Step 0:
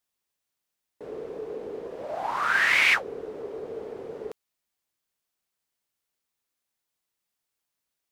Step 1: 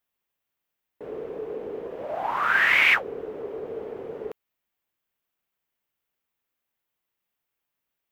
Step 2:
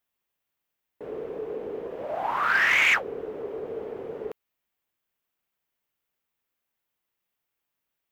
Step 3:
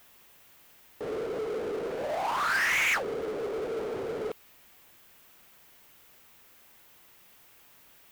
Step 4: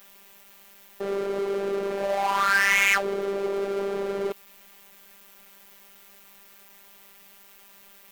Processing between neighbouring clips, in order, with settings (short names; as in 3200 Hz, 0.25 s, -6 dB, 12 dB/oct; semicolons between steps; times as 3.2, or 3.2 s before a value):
band shelf 6500 Hz -9 dB; gain +2 dB
soft clip -13 dBFS, distortion -18 dB
power-law curve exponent 0.5; gain -8 dB
robotiser 198 Hz; gain +7.5 dB